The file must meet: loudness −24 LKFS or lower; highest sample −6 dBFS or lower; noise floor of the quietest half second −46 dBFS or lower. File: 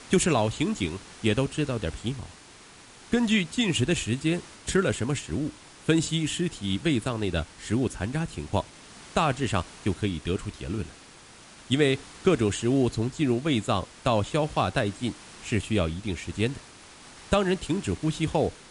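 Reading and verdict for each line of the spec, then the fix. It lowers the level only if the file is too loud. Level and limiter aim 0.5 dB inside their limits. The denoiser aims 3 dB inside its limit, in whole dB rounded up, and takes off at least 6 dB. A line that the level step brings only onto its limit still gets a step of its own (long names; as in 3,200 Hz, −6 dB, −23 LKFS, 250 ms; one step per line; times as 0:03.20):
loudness −27.5 LKFS: in spec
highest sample −9.0 dBFS: in spec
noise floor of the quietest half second −50 dBFS: in spec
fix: no processing needed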